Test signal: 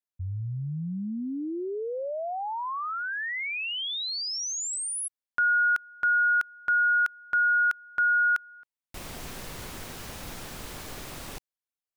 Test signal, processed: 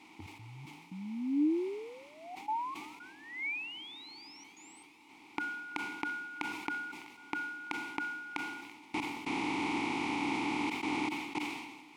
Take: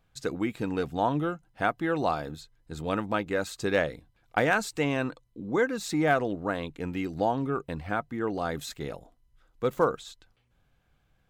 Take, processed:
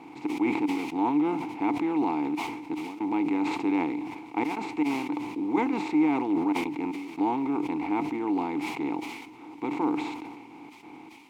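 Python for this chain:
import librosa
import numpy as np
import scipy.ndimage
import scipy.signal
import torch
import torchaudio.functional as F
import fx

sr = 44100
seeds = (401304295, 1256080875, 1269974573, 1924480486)

p1 = fx.bin_compress(x, sr, power=0.4)
p2 = fx.step_gate(p1, sr, bpm=115, pattern='xx.xx..xxxxxxxxx', floor_db=-24.0, edge_ms=4.5)
p3 = fx.quant_dither(p2, sr, seeds[0], bits=6, dither='triangular')
p4 = p2 + F.gain(torch.from_numpy(p3), -3.5).numpy()
p5 = fx.vowel_filter(p4, sr, vowel='u')
p6 = p5 + fx.echo_banded(p5, sr, ms=334, feedback_pct=78, hz=2800.0, wet_db=-24.0, dry=0)
y = fx.sustainer(p6, sr, db_per_s=45.0)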